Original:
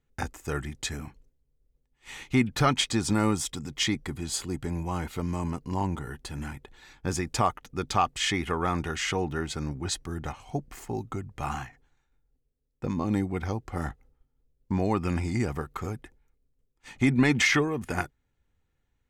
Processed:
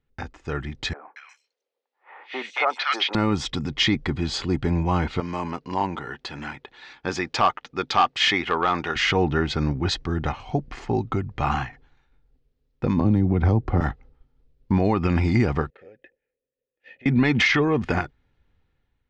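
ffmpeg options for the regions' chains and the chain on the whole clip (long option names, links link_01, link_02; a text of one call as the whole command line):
ffmpeg -i in.wav -filter_complex "[0:a]asettb=1/sr,asplit=3[link_01][link_02][link_03];[link_01]atrim=end=0.934[link_04];[link_02]atrim=start=0.93:end=3.15,asetpts=PTS-STARTPTS,afade=type=in:duration=0.004:curve=qsin,afade=type=out:start_time=2.216:duration=0.004:curve=qsin,highpass=frequency=540:width=0.5412,highpass=frequency=540:width=1.3066,acrossover=split=1400|4900[link_05][link_06][link_07];[link_06]adelay=230[link_08];[link_07]adelay=360[link_09];[link_05][link_08][link_09]amix=inputs=3:normalize=0,atrim=end_sample=97902[link_10];[link_03]atrim=start=3.146[link_11];[link_04][link_10]acrossfade=duration=0.004:curve1=hsin:curve2=qsin[link_12];[link_12][link_11]acrossfade=duration=0.004:curve1=qsin:curve2=hsin,asettb=1/sr,asplit=3[link_13][link_14][link_15];[link_13]atrim=end=5.204[link_16];[link_14]atrim=start=5.2:end=8.96,asetpts=PTS-STARTPTS,afade=type=in:duration=0.004:curve=qsin,afade=type=out:start_time=3.756:duration=0.004:curve=qsin,highpass=frequency=550:poles=1,asoftclip=type=hard:threshold=-20.5dB[link_17];[link_15]atrim=start=8.956[link_18];[link_16][link_17]acrossfade=duration=0.004:curve1=hsin:curve2=qsin[link_19];[link_19][link_18]acrossfade=duration=0.004:curve1=qsin:curve2=hsin,asettb=1/sr,asplit=3[link_20][link_21][link_22];[link_20]atrim=end=13.004[link_23];[link_21]atrim=start=13:end=13.81,asetpts=PTS-STARTPTS,afade=type=in:duration=0.004:curve=qsin,afade=type=out:start_time=0.806:duration=0.004:curve=qsin,tiltshelf=frequency=1200:gain=7,acrossover=split=180|3000[link_24][link_25][link_26];[link_25]acompressor=threshold=-26dB:ratio=6:attack=3.2:release=140:knee=2.83:detection=peak[link_27];[link_24][link_27][link_26]amix=inputs=3:normalize=0[link_28];[link_22]atrim=start=13.806[link_29];[link_23][link_28]acrossfade=duration=0.004:curve1=hsin:curve2=qsin[link_30];[link_30][link_29]acrossfade=duration=0.004:curve1=qsin:curve2=hsin,asettb=1/sr,asplit=3[link_31][link_32][link_33];[link_31]atrim=end=15.704[link_34];[link_32]atrim=start=15.7:end=17.06,asetpts=PTS-STARTPTS,afade=type=in:duration=0.004:curve=qsin,afade=type=out:start_time=1.356:duration=0.004:curve=qsin,acompressor=threshold=-37dB:ratio=4:attack=3.2:release=140:knee=1:detection=peak,asplit=3[link_35][link_36][link_37];[link_35]bandpass=frequency=530:width_type=q:width=8,volume=0dB[link_38];[link_36]bandpass=frequency=1840:width_type=q:width=8,volume=-6dB[link_39];[link_37]bandpass=frequency=2480:width_type=q:width=8,volume=-9dB[link_40];[link_38][link_39][link_40]amix=inputs=3:normalize=0[link_41];[link_33]atrim=start=17.056[link_42];[link_34][link_41]acrossfade=duration=0.004:curve1=hsin:curve2=qsin[link_43];[link_43][link_42]acrossfade=duration=0.004:curve1=qsin:curve2=hsin,lowpass=frequency=4700:width=0.5412,lowpass=frequency=4700:width=1.3066,alimiter=limit=-19.5dB:level=0:latency=1:release=95,dynaudnorm=framelen=320:gausssize=5:maxgain=9dB" out.wav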